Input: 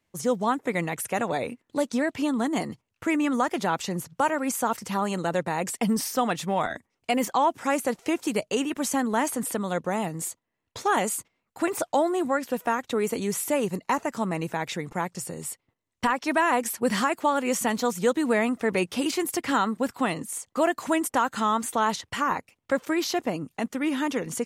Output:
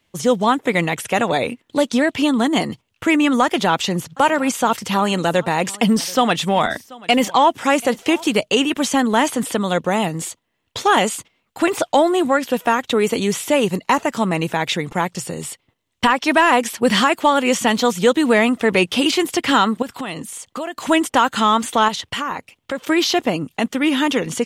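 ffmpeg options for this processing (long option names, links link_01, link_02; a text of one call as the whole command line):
ffmpeg -i in.wav -filter_complex "[0:a]asettb=1/sr,asplit=3[link_01][link_02][link_03];[link_01]atrim=end=3.434[link_04];[link_02]atrim=start=3.43:end=8.41,asetpts=PTS-STARTPTS,afade=type=in:duration=0.004:curve=qsin,afade=type=out:start_time=4.976:duration=0.004:curve=qsin,aecho=1:1:734:0.075,atrim=end_sample=219618[link_05];[link_03]atrim=start=8.406[link_06];[link_04][link_05]acrossfade=duration=0.004:curve1=hsin:curve2=qsin[link_07];[link_07][link_06]acrossfade=duration=0.004:curve1=qsin:curve2=hsin,asettb=1/sr,asplit=3[link_08][link_09][link_10];[link_08]atrim=end=19.824[link_11];[link_09]atrim=start=19.82:end=20.89,asetpts=PTS-STARTPTS,afade=type=in:duration=0.004:curve=qsin,afade=type=out:start_time=1.066:duration=0.004:curve=qsin,acompressor=threshold=-34dB:ratio=4:attack=3.2:release=140:knee=1:detection=peak[link_12];[link_10]atrim=start=20.886[link_13];[link_11][link_12]acrossfade=duration=0.004:curve1=hsin:curve2=qsin[link_14];[link_14][link_13]acrossfade=duration=0.004:curve1=qsin:curve2=hsin,asettb=1/sr,asplit=3[link_15][link_16][link_17];[link_15]atrim=end=21.884[link_18];[link_16]atrim=start=21.88:end=22.89,asetpts=PTS-STARTPTS,afade=type=in:duration=0.004:curve=qsin,afade=type=out:start_time=1.006:duration=0.004:curve=qsin,acompressor=threshold=-35dB:ratio=2:attack=3.2:release=140:knee=1:detection=peak[link_19];[link_17]atrim=start=22.886[link_20];[link_18][link_19]acrossfade=duration=0.004:curve1=hsin:curve2=qsin[link_21];[link_21][link_20]acrossfade=duration=0.004:curve1=qsin:curve2=hsin,acrossover=split=7100[link_22][link_23];[link_23]acompressor=threshold=-42dB:ratio=4:attack=1:release=60[link_24];[link_22][link_24]amix=inputs=2:normalize=0,equalizer=frequency=3200:width_type=o:width=0.68:gain=8,acontrast=67,volume=2dB" out.wav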